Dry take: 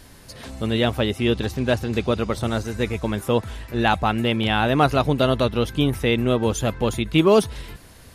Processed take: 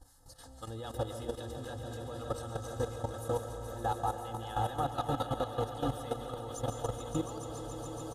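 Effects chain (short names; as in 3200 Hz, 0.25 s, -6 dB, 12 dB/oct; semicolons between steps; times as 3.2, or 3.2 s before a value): notches 60/120/180/240/300/360 Hz; comb 2.4 ms, depth 84%; compressor 3:1, threshold -19 dBFS, peak gain reduction 8.5 dB; fixed phaser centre 970 Hz, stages 4; harmonic tremolo 3.9 Hz, depth 70%, crossover 1100 Hz; graphic EQ 250/500/8000 Hz +7/+9/+6 dB; swelling echo 0.142 s, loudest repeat 5, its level -10 dB; digital reverb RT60 0.88 s, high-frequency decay 0.8×, pre-delay 0.105 s, DRR 5.5 dB; level quantiser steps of 11 dB; gain -8 dB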